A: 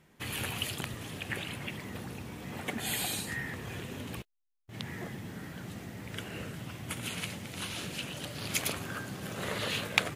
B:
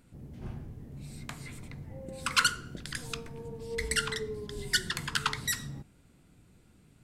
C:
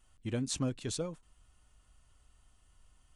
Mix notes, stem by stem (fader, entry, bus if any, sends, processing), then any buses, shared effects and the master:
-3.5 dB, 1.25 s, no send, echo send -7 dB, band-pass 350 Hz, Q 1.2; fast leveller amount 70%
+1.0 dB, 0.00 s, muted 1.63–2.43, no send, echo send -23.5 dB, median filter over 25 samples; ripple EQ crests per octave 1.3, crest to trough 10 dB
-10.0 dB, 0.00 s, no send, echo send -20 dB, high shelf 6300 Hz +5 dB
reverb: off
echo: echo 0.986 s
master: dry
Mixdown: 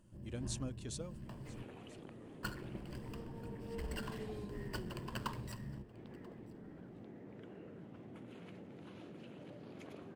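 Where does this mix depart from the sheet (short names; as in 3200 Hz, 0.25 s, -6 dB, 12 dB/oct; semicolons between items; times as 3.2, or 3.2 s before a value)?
stem A -3.5 dB -> -12.5 dB; stem B +1.0 dB -> -5.0 dB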